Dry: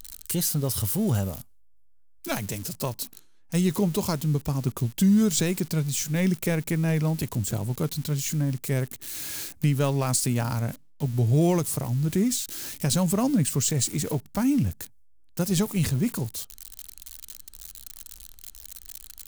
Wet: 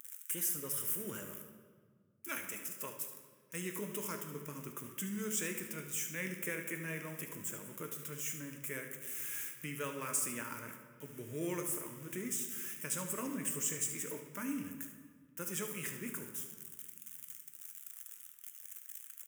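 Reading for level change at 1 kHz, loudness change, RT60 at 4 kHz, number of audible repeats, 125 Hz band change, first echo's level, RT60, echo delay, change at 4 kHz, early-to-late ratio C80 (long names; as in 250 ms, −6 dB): −12.5 dB, −13.5 dB, 1.3 s, 1, −24.5 dB, −13.0 dB, 1.7 s, 74 ms, −15.5 dB, 9.0 dB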